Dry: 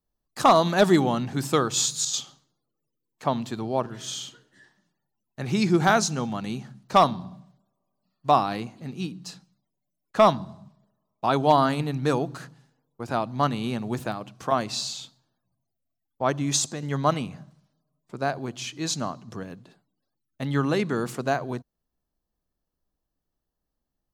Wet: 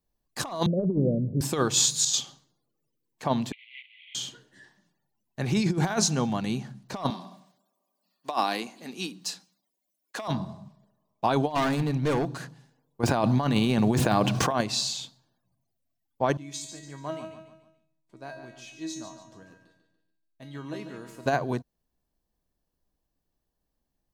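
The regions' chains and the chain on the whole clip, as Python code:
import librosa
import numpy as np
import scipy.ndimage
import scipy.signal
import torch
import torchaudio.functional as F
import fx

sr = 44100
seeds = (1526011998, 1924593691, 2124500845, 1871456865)

y = fx.chain(x, sr, fx.steep_lowpass(hz=560.0, slope=72),
    fx.comb(ms=1.6, depth=0.44), at=(0.66, 1.41))
y = fx.chain(y, sr, fx.cvsd(bps=16000),
    fx.cheby1_highpass(hz=2000.0, order=10), at=(3.52, 4.15))
y = fx.chain(y, sr, fx.highpass(hz=210.0, slope=24),
    fx.tilt_eq(slope=2.0), at=(7.1, 10.28))
y = fx.chain(y, sr, fx.high_shelf(hz=12000.0, db=-6.5),
    fx.overload_stage(gain_db=23.5), at=(11.55, 12.37))
y = fx.chain(y, sr, fx.median_filter(points=3),
    fx.env_flatten(amount_pct=70), at=(13.03, 14.61))
y = fx.chain(y, sr, fx.comb_fb(f0_hz=320.0, decay_s=0.48, harmonics='all', damping=0.0, mix_pct=90),
    fx.echo_feedback(ms=144, feedback_pct=41, wet_db=-9.5), at=(16.37, 21.26))
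y = fx.notch(y, sr, hz=1300.0, q=9.2)
y = fx.over_compress(y, sr, threshold_db=-23.0, ratio=-0.5)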